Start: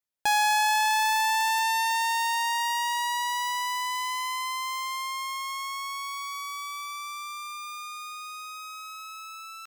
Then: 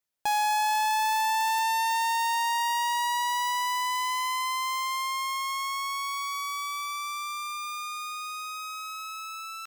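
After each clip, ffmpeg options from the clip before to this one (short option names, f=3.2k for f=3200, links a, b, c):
-af "asoftclip=type=tanh:threshold=-26.5dB,volume=3.5dB"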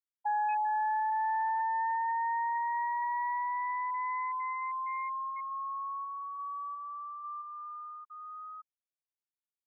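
-af "afftfilt=real='re*gte(hypot(re,im),0.158)':imag='im*gte(hypot(re,im),0.158)':win_size=1024:overlap=0.75,volume=-4dB"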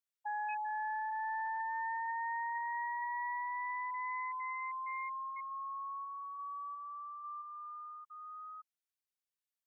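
-af "highpass=1.3k"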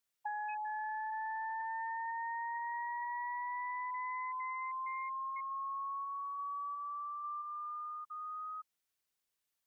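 -filter_complex "[0:a]acrossover=split=810|1800[a][b][c];[a]acompressor=threshold=-53dB:ratio=4[d];[b]acompressor=threshold=-53dB:ratio=4[e];[c]acompressor=threshold=-59dB:ratio=4[f];[d][e][f]amix=inputs=3:normalize=0,volume=7dB"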